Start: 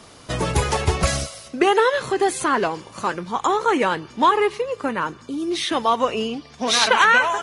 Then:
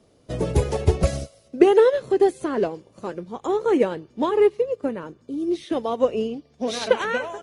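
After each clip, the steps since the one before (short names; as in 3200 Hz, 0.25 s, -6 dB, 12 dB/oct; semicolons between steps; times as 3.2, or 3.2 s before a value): resonant low shelf 740 Hz +9.5 dB, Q 1.5; upward expander 1.5:1, over -31 dBFS; gain -6 dB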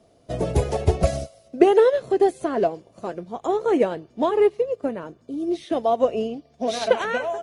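bell 680 Hz +11.5 dB 0.22 oct; gain -1 dB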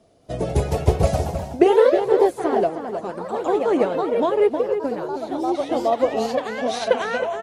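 outdoor echo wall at 54 m, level -8 dB; echoes that change speed 0.22 s, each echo +2 st, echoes 3, each echo -6 dB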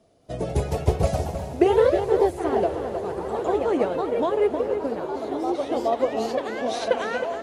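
diffused feedback echo 0.922 s, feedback 58%, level -12 dB; gain -3.5 dB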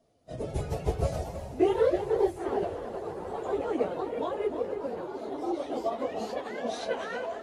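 phase scrambler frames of 50 ms; gain -7.5 dB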